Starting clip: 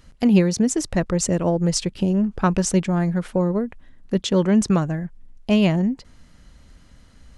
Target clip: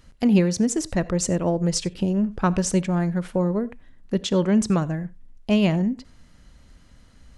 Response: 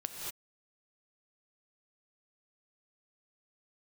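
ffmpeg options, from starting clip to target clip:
-filter_complex "[0:a]asplit=2[s0][s1];[1:a]atrim=start_sample=2205,atrim=end_sample=4410[s2];[s1][s2]afir=irnorm=-1:irlink=0,volume=0.841[s3];[s0][s3]amix=inputs=2:normalize=0,volume=0.473"

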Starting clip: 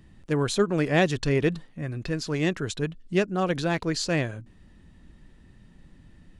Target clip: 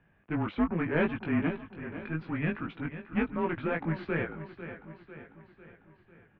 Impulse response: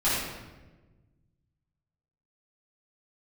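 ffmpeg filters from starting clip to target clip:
-filter_complex "[0:a]aeval=exprs='0.299*(cos(1*acos(clip(val(0)/0.299,-1,1)))-cos(1*PI/2))+0.0668*(cos(2*acos(clip(val(0)/0.299,-1,1)))-cos(2*PI/2))+0.0376*(cos(3*acos(clip(val(0)/0.299,-1,1)))-cos(3*PI/2))':c=same,aeval=exprs='clip(val(0),-1,0.0531)':c=same,highpass=f=280:t=q:w=0.5412,highpass=f=280:t=q:w=1.307,lowpass=f=2700:t=q:w=0.5176,lowpass=f=2700:t=q:w=0.7071,lowpass=f=2700:t=q:w=1.932,afreqshift=-160,asplit=2[s0][s1];[s1]aecho=0:1:498|996|1494|1992|2490|2988:0.251|0.133|0.0706|0.0374|0.0198|0.0105[s2];[s0][s2]amix=inputs=2:normalize=0,flanger=delay=17.5:depth=2.4:speed=2.6,volume=1.68"

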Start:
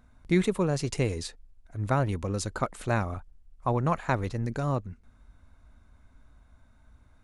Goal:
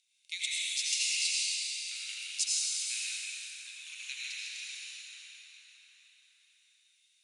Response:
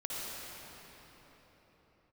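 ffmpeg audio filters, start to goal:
-filter_complex "[0:a]asuperpass=centerf=5400:order=12:qfactor=0.71[s0];[1:a]atrim=start_sample=2205,asetrate=31752,aresample=44100[s1];[s0][s1]afir=irnorm=-1:irlink=0,volume=2.37"

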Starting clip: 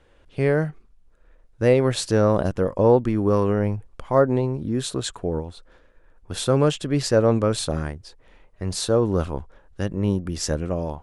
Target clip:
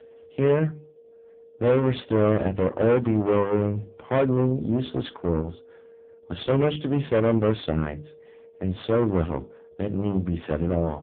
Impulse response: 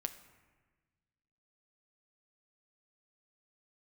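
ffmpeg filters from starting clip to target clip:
-filter_complex "[0:a]aeval=exprs='(tanh(11.2*val(0)+0.6)-tanh(0.6))/11.2':c=same,bandreject=f=50:t=h:w=6,bandreject=f=100:t=h:w=6,bandreject=f=150:t=h:w=6,bandreject=f=200:t=h:w=6,bandreject=f=250:t=h:w=6,bandreject=f=300:t=h:w=6,bandreject=f=350:t=h:w=6,bandreject=f=400:t=h:w=6,aeval=exprs='val(0)+0.00447*sin(2*PI*460*n/s)':c=same,asplit=2[s0][s1];[s1]aecho=0:1:12|47:0.2|0.126[s2];[s0][s2]amix=inputs=2:normalize=0,volume=1.88" -ar 8000 -c:a libopencore_amrnb -b:a 5150

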